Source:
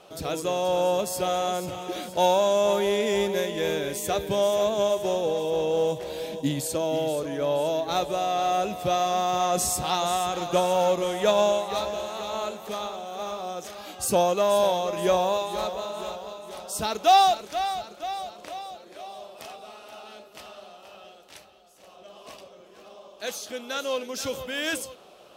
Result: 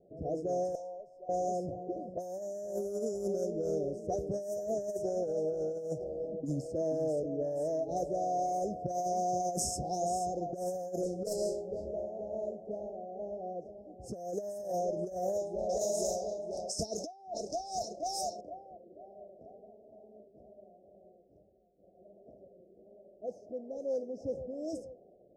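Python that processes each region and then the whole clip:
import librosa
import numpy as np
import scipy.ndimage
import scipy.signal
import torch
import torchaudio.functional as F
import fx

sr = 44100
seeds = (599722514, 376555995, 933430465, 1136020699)

y = fx.chain(x, sr, fx.highpass(hz=1200.0, slope=12),
    fx.high_shelf(hz=5900.0, db=-9.5),
    fx.tube_stage(drive_db=24.0, bias=0.25), at=(0.75, 1.29))
y = fx.chain(y, sr, fx.self_delay(depth_ms=0.19),
    fx.band_shelf(hz=860.0, db=-10.0, octaves=1.1),
    fx.doubler(ms=27.0, db=-3.5), at=(11.03, 11.94))
y = fx.chain(y, sr, fx.peak_eq(hz=4700.0, db=13.0, octaves=3.0),
    fx.over_compress(threshold_db=-27.0, ratio=-1.0), at=(15.69, 18.41))
y = fx.env_lowpass(y, sr, base_hz=370.0, full_db=-19.5)
y = scipy.signal.sosfilt(scipy.signal.cheby1(5, 1.0, [710.0, 5200.0], 'bandstop', fs=sr, output='sos'), y)
y = fx.over_compress(y, sr, threshold_db=-27.0, ratio=-0.5)
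y = F.gain(torch.from_numpy(y), -5.5).numpy()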